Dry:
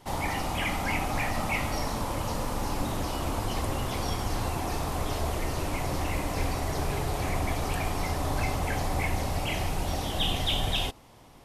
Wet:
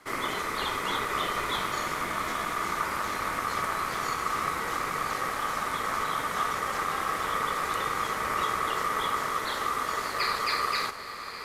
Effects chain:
feedback delay with all-pass diffusion 908 ms, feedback 45%, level −10.5 dB
ring modulation 1,200 Hz
level +1.5 dB

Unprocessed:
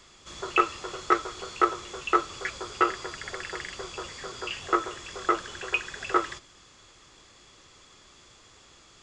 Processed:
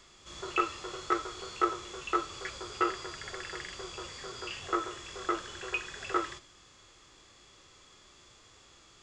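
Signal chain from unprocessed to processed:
harmonic and percussive parts rebalanced harmonic +8 dB
level −8.5 dB

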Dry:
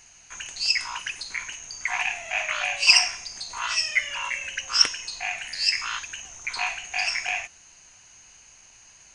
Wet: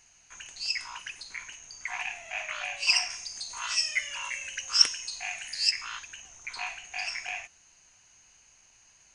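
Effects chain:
0:03.10–0:05.71: high-shelf EQ 4,700 Hz +11 dB
level −8 dB

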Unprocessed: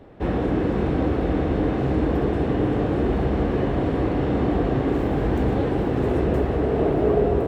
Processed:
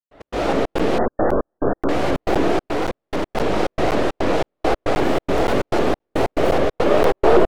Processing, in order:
stylus tracing distortion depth 0.48 ms
low-shelf EQ 410 Hz −10.5 dB
comb and all-pass reverb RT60 1 s, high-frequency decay 0.75×, pre-delay 70 ms, DRR −7.5 dB
dynamic equaliser 580 Hz, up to +5 dB, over −33 dBFS, Q 1.2
0:02.66–0:03.37: hard clipping −17 dBFS, distortion −17 dB
gate pattern ".x.xxx.xxx.xx." 139 BPM −60 dB
0:00.98–0:01.89: linear-phase brick-wall low-pass 1,800 Hz
regular buffer underruns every 0.52 s, samples 512, zero, from 0:00.79
pitch modulation by a square or saw wave saw up 3.8 Hz, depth 250 cents
level −1 dB

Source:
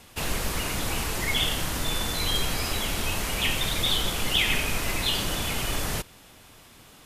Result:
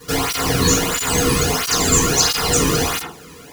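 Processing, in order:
bucket-brigade delay 95 ms, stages 1,024, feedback 31%, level −4.5 dB
convolution reverb, pre-delay 3 ms, DRR −6.5 dB
wrong playback speed 7.5 ips tape played at 15 ips
through-zero flanger with one copy inverted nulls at 1.5 Hz, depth 1.5 ms
level +3.5 dB

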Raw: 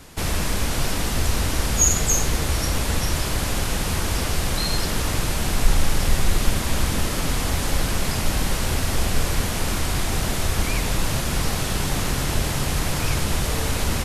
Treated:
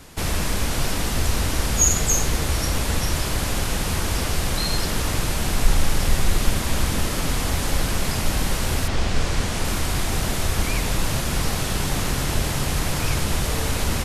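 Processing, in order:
0:08.87–0:09.63: low-pass filter 4,900 Hz → 11,000 Hz 12 dB per octave

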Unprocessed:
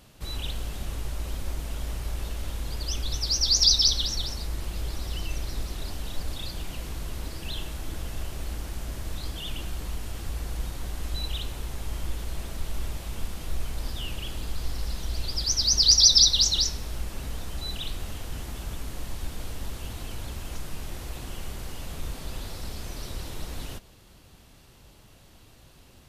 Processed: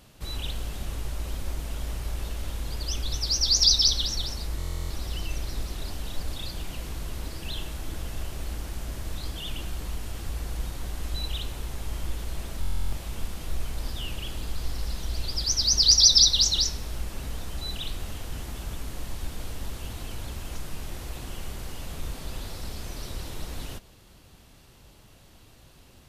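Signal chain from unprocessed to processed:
buffer that repeats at 0:04.58/0:12.60, samples 1,024, times 13

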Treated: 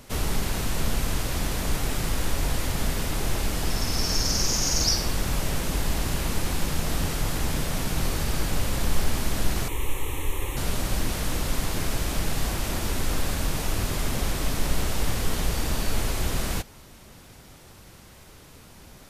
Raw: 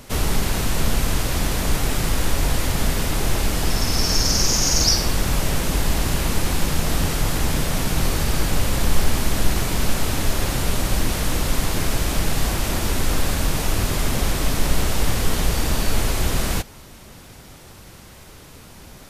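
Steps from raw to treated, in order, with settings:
0:09.68–0:10.57: phaser with its sweep stopped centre 990 Hz, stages 8
level −5.5 dB

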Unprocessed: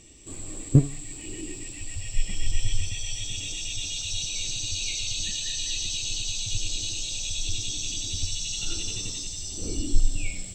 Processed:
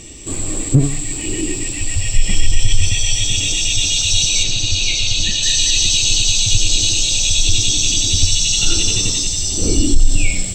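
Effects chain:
0:04.43–0:05.43: high-frequency loss of the air 81 metres
boost into a limiter +16.5 dB
level −1 dB

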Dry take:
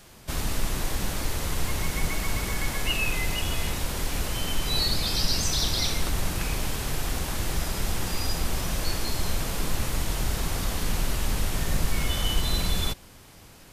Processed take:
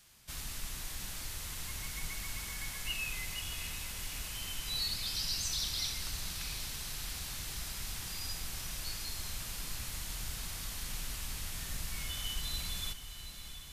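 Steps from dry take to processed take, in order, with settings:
guitar amp tone stack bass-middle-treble 5-5-5
on a send: feedback delay with all-pass diffusion 714 ms, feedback 66%, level −10.5 dB
on the sum: level −1.5 dB

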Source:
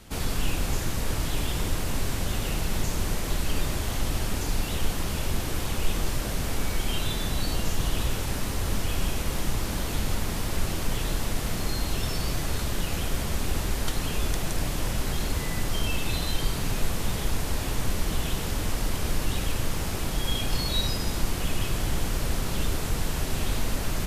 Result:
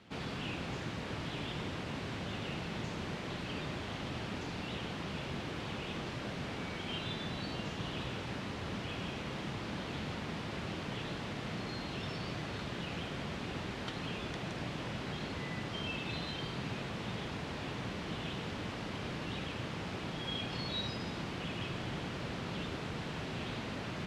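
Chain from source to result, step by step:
Chebyshev band-pass filter 140–3,200 Hz, order 2
level −6 dB

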